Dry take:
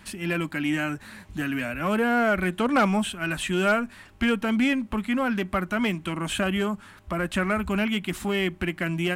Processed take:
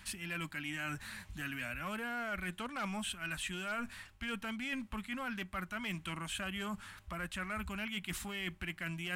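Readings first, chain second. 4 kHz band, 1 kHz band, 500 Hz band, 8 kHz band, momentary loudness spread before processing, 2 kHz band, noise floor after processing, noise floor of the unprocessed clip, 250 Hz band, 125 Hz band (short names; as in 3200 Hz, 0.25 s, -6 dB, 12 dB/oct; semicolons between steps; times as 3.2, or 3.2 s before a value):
-9.5 dB, -14.5 dB, -20.0 dB, -7.0 dB, 8 LU, -11.0 dB, -59 dBFS, -50 dBFS, -17.5 dB, -14.0 dB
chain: bell 370 Hz -13 dB 2.5 oct; reverse; compressor 6:1, threshold -37 dBFS, peak gain reduction 14 dB; reverse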